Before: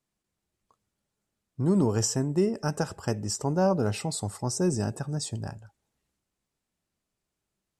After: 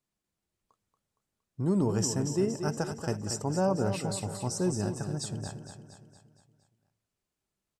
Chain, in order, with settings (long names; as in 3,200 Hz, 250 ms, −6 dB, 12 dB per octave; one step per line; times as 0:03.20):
repeating echo 232 ms, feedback 52%, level −8.5 dB
level −3.5 dB